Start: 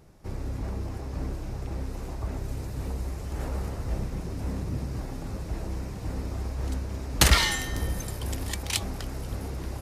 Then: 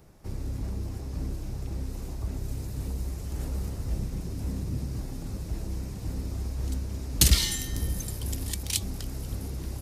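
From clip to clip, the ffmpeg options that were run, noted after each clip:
-filter_complex "[0:a]highshelf=f=10k:g=6,acrossover=split=360|3000[a][b][c];[b]acompressor=threshold=-57dB:ratio=2[d];[a][d][c]amix=inputs=3:normalize=0"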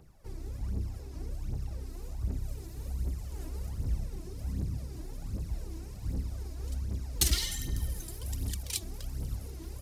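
-af "aphaser=in_gain=1:out_gain=1:delay=3.2:decay=0.64:speed=1.3:type=triangular,volume=-8.5dB"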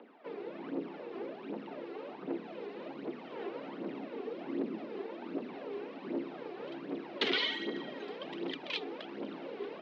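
-af "asoftclip=type=tanh:threshold=-21dB,highpass=f=200:t=q:w=0.5412,highpass=f=200:t=q:w=1.307,lowpass=f=3.3k:t=q:w=0.5176,lowpass=f=3.3k:t=q:w=0.7071,lowpass=f=3.3k:t=q:w=1.932,afreqshift=80,volume=9.5dB"

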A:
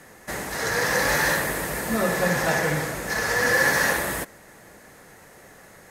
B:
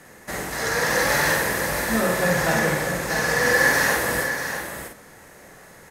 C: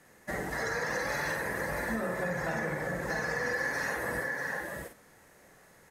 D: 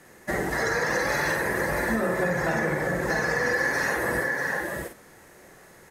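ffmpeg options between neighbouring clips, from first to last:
-filter_complex "[0:a]asplit=2[a][b];[b]adelay=49,volume=-4dB[c];[a][c]amix=inputs=2:normalize=0,asplit=2[d][e];[e]aecho=0:1:641:0.398[f];[d][f]amix=inputs=2:normalize=0"
-af "afftdn=nr=12:nf=-29,acompressor=threshold=-31dB:ratio=5"
-af "equalizer=f=360:w=6.3:g=6.5,volume=7dB"

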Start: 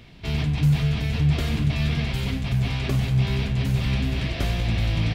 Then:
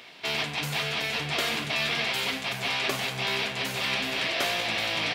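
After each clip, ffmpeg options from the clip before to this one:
-af "highpass=590,volume=6.5dB"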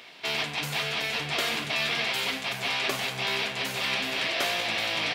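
-af "lowshelf=f=200:g=-4.5"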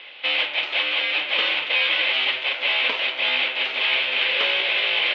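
-af "highpass=f=550:t=q:w=0.5412,highpass=f=550:t=q:w=1.307,lowpass=f=3.5k:t=q:w=0.5176,lowpass=f=3.5k:t=q:w=0.7071,lowpass=f=3.5k:t=q:w=1.932,afreqshift=-140,aexciter=amount=3.3:drive=3.2:freq=2.4k,volume=3dB"

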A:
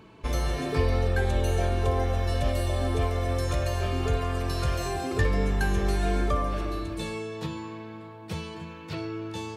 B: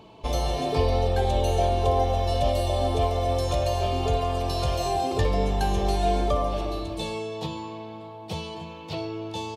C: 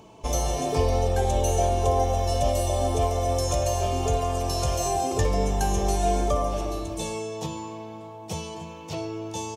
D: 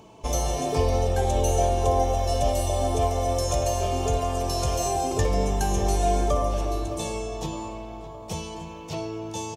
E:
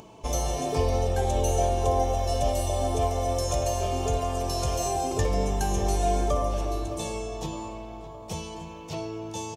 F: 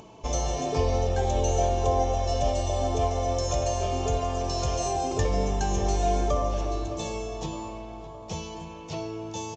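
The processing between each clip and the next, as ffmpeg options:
-af "firequalizer=gain_entry='entry(320,0);entry(740,10);entry(1500,-9);entry(3100,6);entry(8100,0)':delay=0.05:min_phase=1"
-af "highshelf=f=5.1k:t=q:w=3:g=6"
-filter_complex "[0:a]asplit=2[a][b];[b]adelay=613,lowpass=f=2k:p=1,volume=-13.5dB,asplit=2[c][d];[d]adelay=613,lowpass=f=2k:p=1,volume=0.52,asplit=2[e][f];[f]adelay=613,lowpass=f=2k:p=1,volume=0.52,asplit=2[g][h];[h]adelay=613,lowpass=f=2k:p=1,volume=0.52,asplit=2[i][j];[j]adelay=613,lowpass=f=2k:p=1,volume=0.52[k];[a][c][e][g][i][k]amix=inputs=6:normalize=0"
-af "acompressor=mode=upward:threshold=-42dB:ratio=2.5,volume=-2dB"
-ar 16000 -c:a pcm_mulaw

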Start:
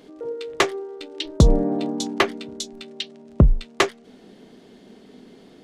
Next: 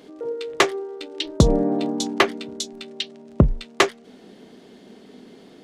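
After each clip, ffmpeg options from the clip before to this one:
-af "lowshelf=f=76:g=-10,volume=2dB"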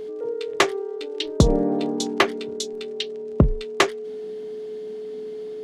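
-af "aeval=exprs='val(0)+0.0355*sin(2*PI*430*n/s)':c=same,volume=-1dB"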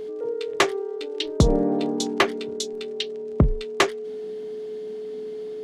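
-af "asoftclip=type=tanh:threshold=-5.5dB"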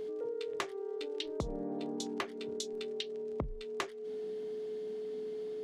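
-af "acompressor=threshold=-28dB:ratio=8,volume=-6.5dB"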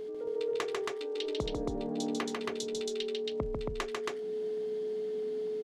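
-af "aecho=1:1:145.8|274.1:0.708|0.794"

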